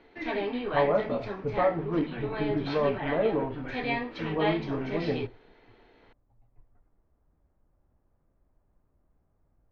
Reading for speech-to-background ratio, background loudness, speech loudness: 3.5 dB, -34.0 LUFS, -30.5 LUFS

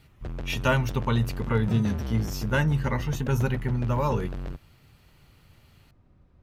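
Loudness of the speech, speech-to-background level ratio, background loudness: -27.0 LUFS, 9.0 dB, -36.0 LUFS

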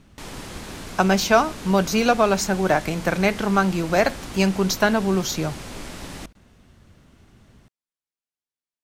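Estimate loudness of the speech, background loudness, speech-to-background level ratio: -21.0 LUFS, -36.5 LUFS, 15.5 dB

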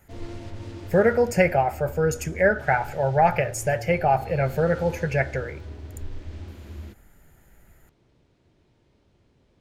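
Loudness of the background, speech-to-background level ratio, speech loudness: -39.5 LUFS, 16.5 dB, -23.0 LUFS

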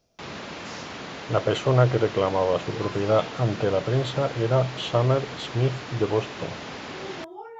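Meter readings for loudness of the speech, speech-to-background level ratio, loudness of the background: -24.5 LUFS, 12.0 dB, -36.5 LUFS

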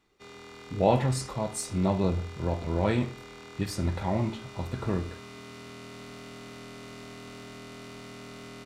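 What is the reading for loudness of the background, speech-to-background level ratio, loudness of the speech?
-45.0 LUFS, 15.5 dB, -29.5 LUFS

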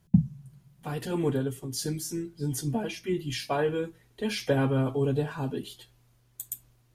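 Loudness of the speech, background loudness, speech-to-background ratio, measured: -30.5 LUFS, -28.0 LUFS, -2.5 dB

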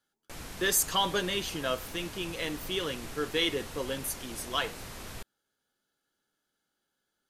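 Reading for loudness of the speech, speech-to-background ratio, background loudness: -31.0 LUFS, 12.0 dB, -43.0 LUFS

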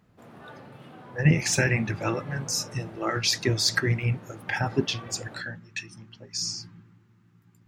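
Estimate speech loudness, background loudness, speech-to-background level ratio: -27.0 LUFS, -46.0 LUFS, 19.0 dB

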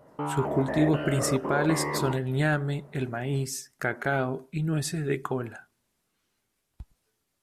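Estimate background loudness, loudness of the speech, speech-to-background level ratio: -31.5 LUFS, -28.5 LUFS, 3.0 dB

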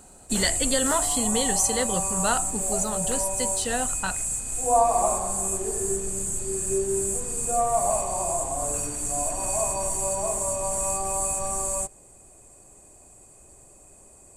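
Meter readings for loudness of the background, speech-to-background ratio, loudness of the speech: -25.0 LUFS, -2.5 dB, -27.5 LUFS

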